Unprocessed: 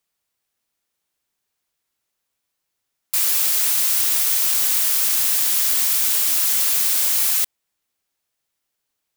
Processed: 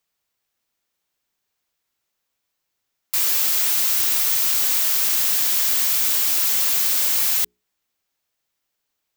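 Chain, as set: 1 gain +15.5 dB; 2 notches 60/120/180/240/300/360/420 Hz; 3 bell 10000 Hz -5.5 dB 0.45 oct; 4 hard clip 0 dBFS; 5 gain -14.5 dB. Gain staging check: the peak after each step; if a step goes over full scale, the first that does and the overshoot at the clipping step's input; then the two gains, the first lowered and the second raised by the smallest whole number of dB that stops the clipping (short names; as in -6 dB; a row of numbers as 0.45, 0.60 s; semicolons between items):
+11.0, +11.0, +9.5, 0.0, -14.5 dBFS; step 1, 9.5 dB; step 1 +5.5 dB, step 5 -4.5 dB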